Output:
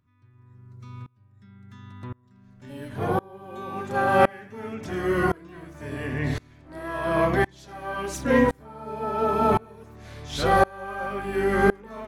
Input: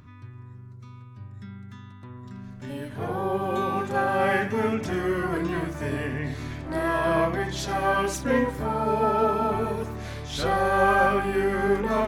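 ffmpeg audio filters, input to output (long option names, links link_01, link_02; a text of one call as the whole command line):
ffmpeg -i in.wav -af "aeval=exprs='val(0)*pow(10,-29*if(lt(mod(-0.94*n/s,1),2*abs(-0.94)/1000),1-mod(-0.94*n/s,1)/(2*abs(-0.94)/1000),(mod(-0.94*n/s,1)-2*abs(-0.94)/1000)/(1-2*abs(-0.94)/1000))/20)':channel_layout=same,volume=7.5dB" out.wav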